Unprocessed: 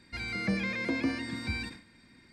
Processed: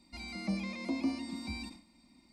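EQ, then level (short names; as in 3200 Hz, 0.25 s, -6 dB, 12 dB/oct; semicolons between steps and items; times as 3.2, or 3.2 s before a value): bell 3300 Hz -5.5 dB 0.26 oct; fixed phaser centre 440 Hz, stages 6; -1.5 dB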